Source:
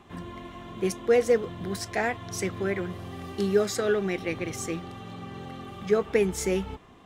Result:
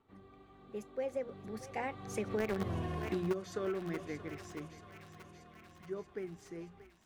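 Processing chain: Doppler pass-by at 2.69 s, 35 m/s, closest 3.6 m; treble shelf 11 kHz -3 dB; in parallel at -5 dB: bit crusher 5-bit; on the sum: treble shelf 2.2 kHz -9.5 dB; hum notches 60/120/180/240 Hz; on a send: thinning echo 630 ms, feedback 70%, high-pass 760 Hz, level -14 dB; on the sum: compression 4:1, threshold -44 dBFS, peak gain reduction 13.5 dB; trim +11.5 dB

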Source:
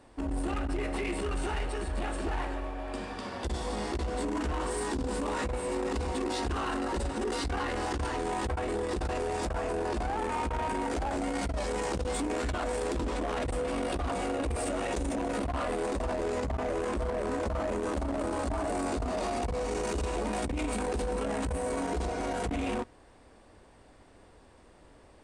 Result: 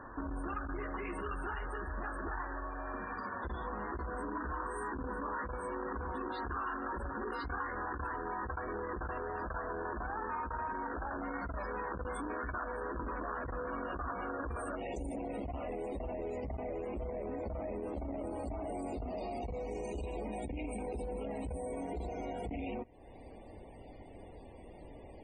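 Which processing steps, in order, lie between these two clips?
high-order bell 1.3 kHz +10 dB 1 oct, from 14.75 s -8.5 dB; compression 3:1, threshold -48 dBFS, peak gain reduction 18.5 dB; loudest bins only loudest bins 64; trim +6 dB

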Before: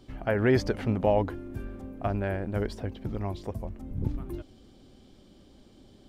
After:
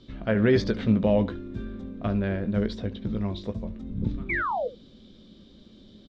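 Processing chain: graphic EQ with 31 bands 200 Hz +11 dB, 500 Hz +3 dB, 800 Hz -10 dB; painted sound fall, 4.29–4.68 s, 450–2400 Hz -28 dBFS; low-pass 6.1 kHz 24 dB/octave; peaking EQ 3.7 kHz +13 dB 0.26 oct; on a send: early reflections 18 ms -10 dB, 72 ms -17 dB

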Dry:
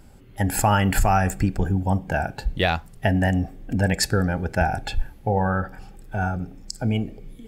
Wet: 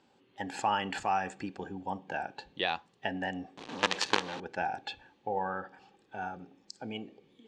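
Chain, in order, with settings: 3.57–4.40 s: companded quantiser 2-bit; cabinet simulation 420–5400 Hz, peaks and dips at 440 Hz -3 dB, 640 Hz -9 dB, 1.4 kHz -8 dB, 2.1 kHz -7 dB, 5.1 kHz -7 dB; trim -4.5 dB

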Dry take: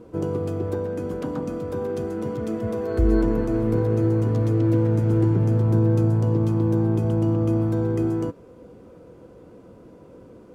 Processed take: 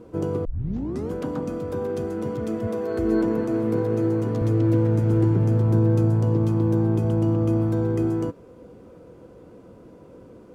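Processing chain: 0.45 s: tape start 0.66 s; 2.67–4.42 s: high-pass 140 Hz 12 dB/octave

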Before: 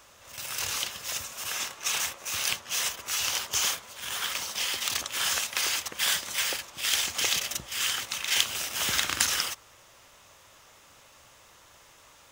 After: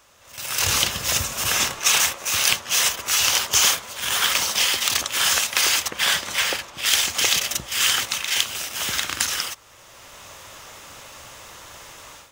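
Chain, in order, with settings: 0.66–1.79 s: bass shelf 280 Hz +10.5 dB; level rider gain up to 14.5 dB; 5.90–6.86 s: treble shelf 4.8 kHz -8.5 dB; trim -1 dB

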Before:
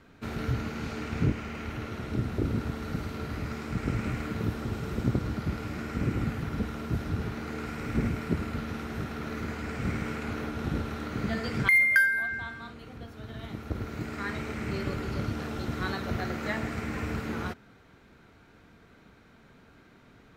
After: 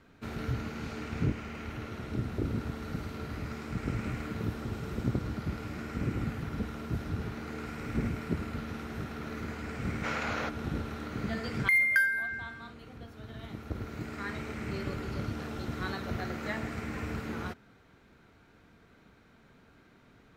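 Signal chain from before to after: time-frequency box 10.04–10.49 s, 460–7300 Hz +9 dB; trim -3.5 dB

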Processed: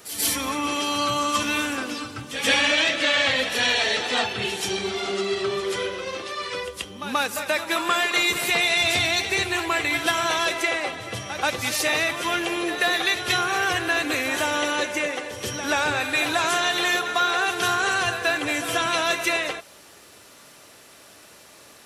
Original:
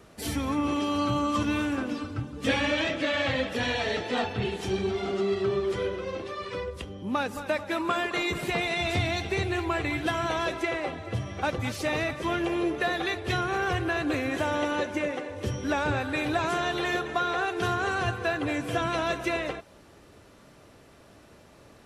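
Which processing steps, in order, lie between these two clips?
tilt EQ +3.5 dB/octave; on a send: reverse echo 132 ms -10.5 dB; on the sum: trim +4.5 dB

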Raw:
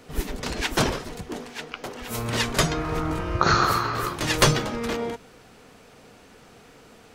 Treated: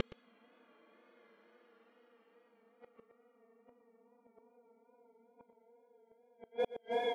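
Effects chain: companding laws mixed up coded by A; spectral noise reduction 26 dB; Paulstretch 31×, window 0.05 s, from 4.88 s; high-pass 200 Hz 24 dB/octave; treble shelf 2.6 kHz +8 dB; Schroeder reverb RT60 0.76 s, combs from 26 ms, DRR 11.5 dB; wow and flutter 52 cents; inverted gate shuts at -23 dBFS, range -39 dB; on a send: delay 119 ms -17 dB; on the sum: level-controlled noise filter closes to 1.9 kHz, open at -35 dBFS; trim +1 dB

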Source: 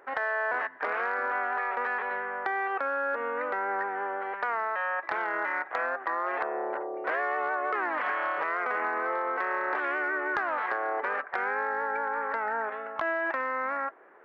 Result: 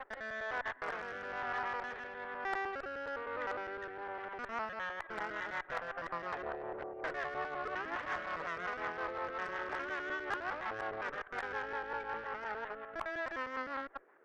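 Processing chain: time reversed locally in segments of 102 ms; Chebyshev shaper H 6 -23 dB, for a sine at -17 dBFS; rotary cabinet horn 1.1 Hz, later 5.5 Hz, at 4.04 s; trim -6.5 dB

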